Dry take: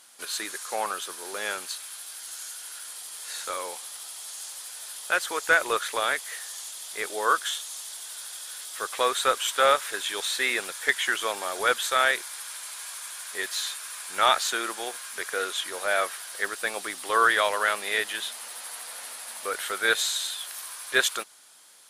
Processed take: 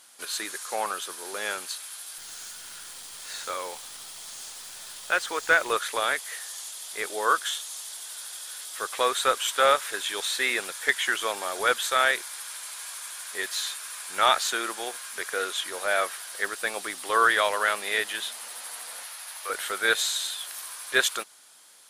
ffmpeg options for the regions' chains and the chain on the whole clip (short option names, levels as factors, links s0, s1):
-filter_complex "[0:a]asettb=1/sr,asplit=3[s0][s1][s2];[s0]atrim=end=2.184[s3];[s1]atrim=start=2.18:end=5.7,asetpts=PTS-STARTPTS,afade=t=in:d=0.004:c=qsin,afade=t=out:st=3.516:d=0.004:c=qsin,acrossover=split=9200[s4][s5];[s5]acompressor=threshold=0.00224:ratio=4:attack=1:release=60[s6];[s4][s6]amix=inputs=2:normalize=0,acrusher=bits=8:dc=4:mix=0:aa=0.000001[s7];[s2]atrim=start=5.696[s8];[s3][s7]acrossfade=d=0.004:c1=hsin:c2=qsin[s9];[s9][s8]acrossfade=d=0.004:c1=qsin:c2=hsin,asettb=1/sr,asplit=3[s10][s11][s12];[s10]atrim=end=19.034[s13];[s11]atrim=start=19.03:end=19.5,asetpts=PTS-STARTPTS,afade=t=in:d=0.004:c=qsin,afade=t=out:st=0.466:d=0.004:c=qsin,highpass=810,equalizer=f=8100:w=5.4:g=-6.5[s14];[s12]atrim=start=19.496[s15];[s13][s14]acrossfade=d=0.004:c1=hsin:c2=qsin[s16];[s16][s15]acrossfade=d=0.004:c1=qsin:c2=hsin"